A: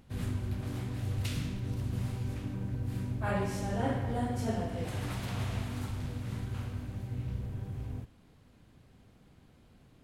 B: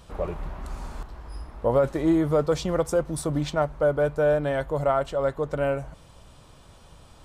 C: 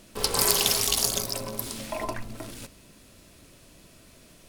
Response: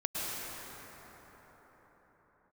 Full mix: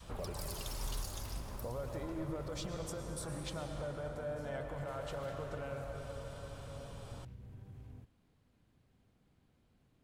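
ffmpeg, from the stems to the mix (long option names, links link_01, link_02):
-filter_complex "[0:a]acompressor=threshold=-35dB:ratio=6,volume=-11.5dB[link_01];[1:a]alimiter=limit=-22.5dB:level=0:latency=1,volume=-2.5dB,asplit=2[link_02][link_03];[link_03]volume=-16dB[link_04];[2:a]aphaser=in_gain=1:out_gain=1:delay=3.9:decay=0.66:speed=0.48:type=sinusoidal,volume=-18.5dB,asplit=2[link_05][link_06];[link_06]volume=-18.5dB[link_07];[link_02][link_05]amix=inputs=2:normalize=0,acompressor=threshold=-43dB:ratio=5,volume=0dB[link_08];[3:a]atrim=start_sample=2205[link_09];[link_04][link_07]amix=inputs=2:normalize=0[link_10];[link_10][link_09]afir=irnorm=-1:irlink=0[link_11];[link_01][link_08][link_11]amix=inputs=3:normalize=0,adynamicequalizer=threshold=0.00316:dfrequency=330:dqfactor=0.72:tfrequency=330:tqfactor=0.72:attack=5:release=100:ratio=0.375:range=3:mode=cutabove:tftype=bell"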